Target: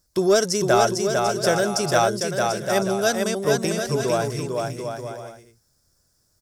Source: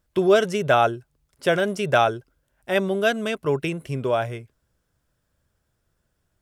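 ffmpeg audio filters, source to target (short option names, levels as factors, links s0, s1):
-filter_complex "[0:a]highshelf=f=3900:t=q:w=3:g=9.5,asoftclip=type=tanh:threshold=0.473,asplit=2[s0][s1];[s1]aecho=0:1:450|742.5|932.6|1056|1137:0.631|0.398|0.251|0.158|0.1[s2];[s0][s2]amix=inputs=2:normalize=0"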